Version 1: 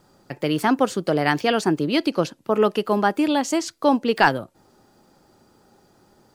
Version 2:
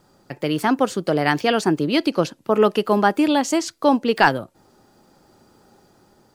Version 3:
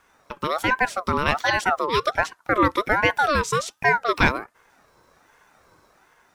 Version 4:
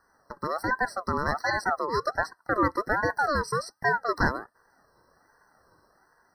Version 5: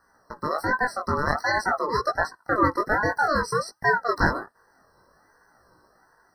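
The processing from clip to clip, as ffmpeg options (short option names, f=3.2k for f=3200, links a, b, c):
-af "dynaudnorm=f=300:g=7:m=5.5dB"
-af "aeval=exprs='val(0)*sin(2*PI*1000*n/s+1000*0.3/1.3*sin(2*PI*1.3*n/s))':c=same"
-af "afftfilt=real='re*eq(mod(floor(b*sr/1024/2000),2),0)':imag='im*eq(mod(floor(b*sr/1024/2000),2),0)':win_size=1024:overlap=0.75,volume=-5dB"
-af "flanger=delay=16:depth=6.2:speed=0.52,volume=6dB"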